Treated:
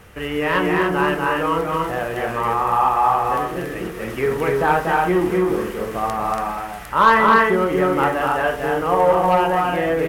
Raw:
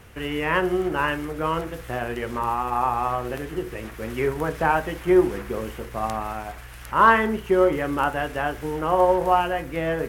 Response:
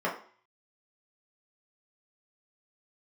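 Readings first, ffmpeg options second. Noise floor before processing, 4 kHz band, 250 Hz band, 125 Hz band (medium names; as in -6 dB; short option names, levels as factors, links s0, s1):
-40 dBFS, +4.5 dB, +3.5 dB, +4.0 dB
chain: -filter_complex "[0:a]aecho=1:1:239.1|282.8:0.631|0.631,asoftclip=type=tanh:threshold=0.335,asplit=2[s0][s1];[1:a]atrim=start_sample=2205[s2];[s1][s2]afir=irnorm=-1:irlink=0,volume=0.178[s3];[s0][s3]amix=inputs=2:normalize=0,volume=1.19"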